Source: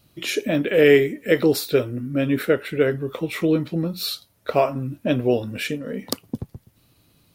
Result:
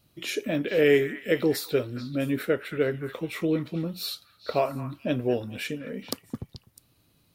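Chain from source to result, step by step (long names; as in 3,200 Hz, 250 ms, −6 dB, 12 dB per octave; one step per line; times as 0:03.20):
echo through a band-pass that steps 218 ms, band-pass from 1,400 Hz, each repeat 1.4 octaves, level −8 dB
level −6 dB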